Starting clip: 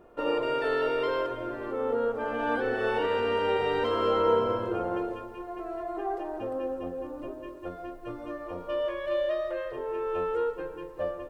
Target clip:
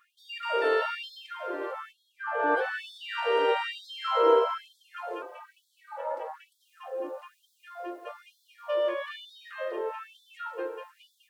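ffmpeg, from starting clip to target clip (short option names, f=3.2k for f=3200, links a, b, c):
-filter_complex "[0:a]asplit=3[a][b][c];[a]afade=t=out:st=1.91:d=0.02[d];[b]highshelf=f=2.1k:t=q:w=1.5:g=-7,afade=t=in:st=1.91:d=0.02,afade=t=out:st=2.56:d=0.02[e];[c]afade=t=in:st=2.56:d=0.02[f];[d][e][f]amix=inputs=3:normalize=0,asettb=1/sr,asplit=3[g][h][i];[g]atrim=end=5.224[j];[h]atrim=start=5.22:end=6.6,asetpts=PTS-STARTPTS,afade=t=in:d=0.004:c=qsin,afade=t=out:st=1.376:d=0.004:c=qsin,aeval=exprs='val(0)*sin(2*PI*160*n/s)':c=same[k];[i]atrim=start=6.596[l];[j][k]acrossfade=d=0.004:c1=hsin:c2=qsin[m];[m][l]acrossfade=d=0.004:c1=qsin:c2=hsin,afftfilt=real='re*gte(b*sr/1024,280*pow(3300/280,0.5+0.5*sin(2*PI*1.1*pts/sr)))':imag='im*gte(b*sr/1024,280*pow(3300/280,0.5+0.5*sin(2*PI*1.1*pts/sr)))':win_size=1024:overlap=0.75,volume=3dB"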